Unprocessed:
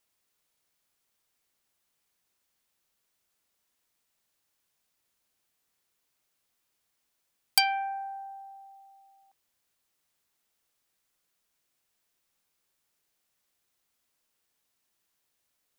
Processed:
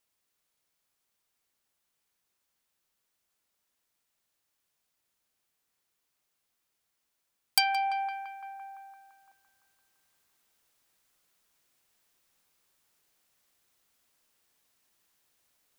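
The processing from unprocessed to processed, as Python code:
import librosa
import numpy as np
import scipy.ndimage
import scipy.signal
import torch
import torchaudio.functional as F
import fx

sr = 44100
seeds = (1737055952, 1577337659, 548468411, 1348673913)

p1 = x + fx.echo_banded(x, sr, ms=170, feedback_pct=75, hz=1200.0, wet_db=-10.0, dry=0)
p2 = fx.rider(p1, sr, range_db=10, speed_s=0.5)
y = p2 * 10.0 ** (1.0 / 20.0)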